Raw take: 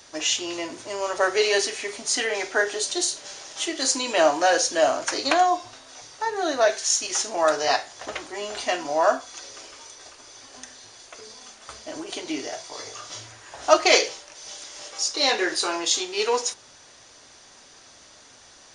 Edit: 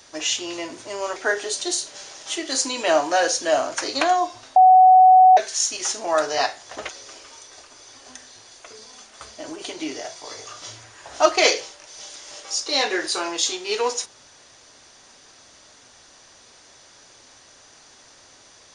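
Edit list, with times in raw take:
1.16–2.46 cut
5.86–6.67 bleep 746 Hz -7.5 dBFS
8.19–9.37 cut

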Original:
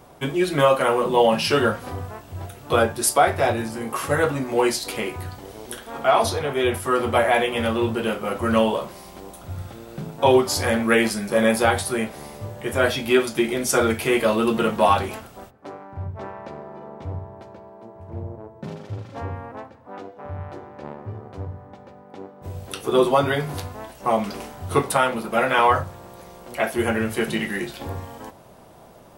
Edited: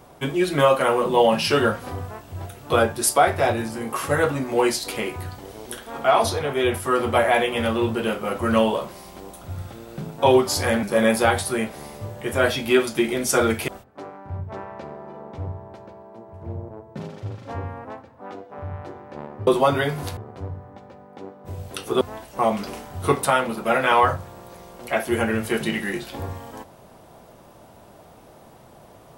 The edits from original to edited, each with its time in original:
10.83–11.23 cut
14.08–15.35 cut
22.98–23.68 move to 21.14

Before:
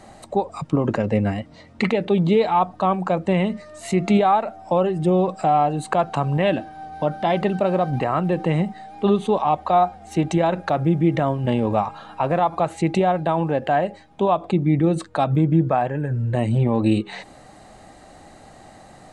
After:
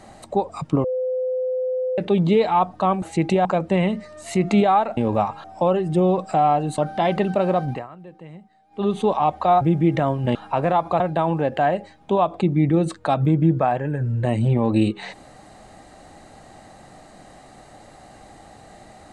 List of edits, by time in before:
0.84–1.98 bleep 511 Hz -20.5 dBFS
5.88–7.03 cut
7.86–9.22 dip -20.5 dB, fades 0.27 s
9.86–10.81 cut
11.55–12.02 move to 4.54
12.67–13.1 move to 3.02

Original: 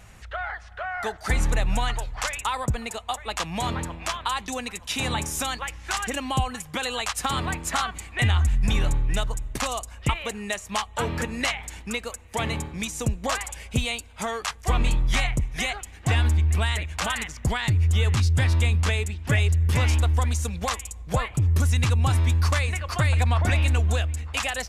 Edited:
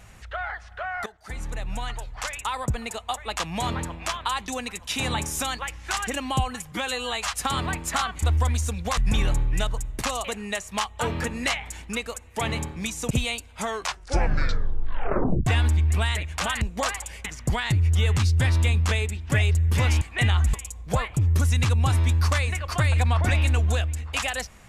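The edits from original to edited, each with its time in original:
1.06–2.91 fade in, from -18.5 dB
6.72–7.13 stretch 1.5×
8.02–8.54 swap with 19.99–20.74
9.81–10.22 cut
13.08–13.71 move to 17.22
14.28 tape stop 1.79 s

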